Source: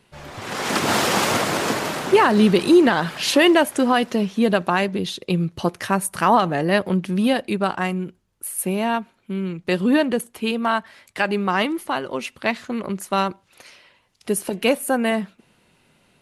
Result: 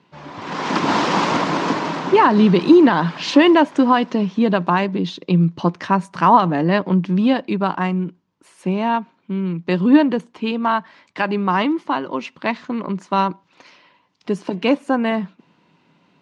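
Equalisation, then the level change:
high-frequency loss of the air 50 metres
loudspeaker in its box 130–6,400 Hz, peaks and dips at 170 Hz +9 dB, 290 Hz +9 dB, 990 Hz +9 dB
−1.0 dB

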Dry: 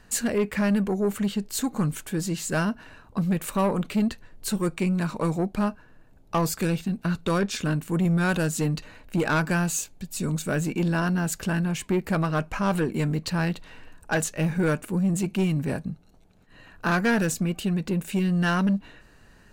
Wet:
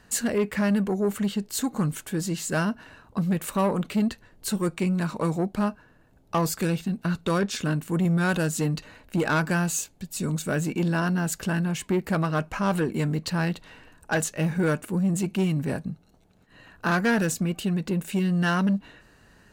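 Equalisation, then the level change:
high-pass filter 51 Hz 6 dB per octave
notch filter 2,400 Hz, Q 25
0.0 dB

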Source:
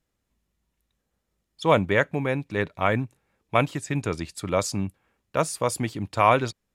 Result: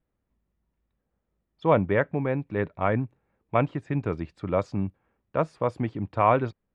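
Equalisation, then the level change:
low-pass filter 2,700 Hz 12 dB per octave
high-shelf EQ 2,000 Hz −11 dB
0.0 dB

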